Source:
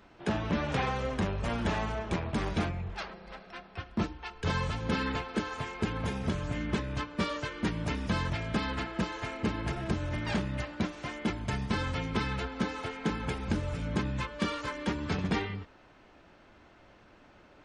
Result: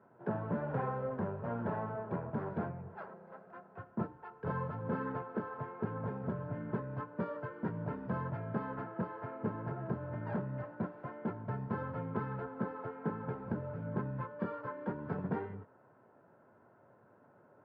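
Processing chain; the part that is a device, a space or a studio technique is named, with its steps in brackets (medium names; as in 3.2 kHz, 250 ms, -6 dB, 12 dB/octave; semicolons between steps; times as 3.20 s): Chebyshev band-pass 110–1300 Hz, order 3; car door speaker (cabinet simulation 82–7600 Hz, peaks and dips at 87 Hz -4 dB, 200 Hz -4 dB, 310 Hz -9 dB, 780 Hz -4 dB, 2.2 kHz -3 dB, 4.9 kHz +9 dB); band-stop 1.2 kHz, Q 5.2; trim -1 dB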